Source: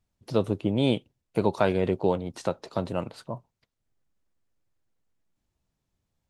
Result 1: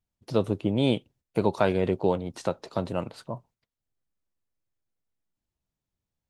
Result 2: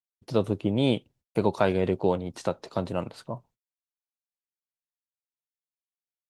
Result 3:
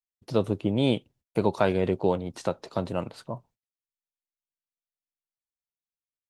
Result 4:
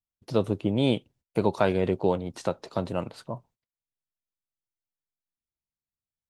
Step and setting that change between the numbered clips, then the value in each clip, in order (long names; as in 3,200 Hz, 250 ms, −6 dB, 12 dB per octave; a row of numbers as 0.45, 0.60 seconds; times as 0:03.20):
noise gate, range: −8, −54, −35, −22 decibels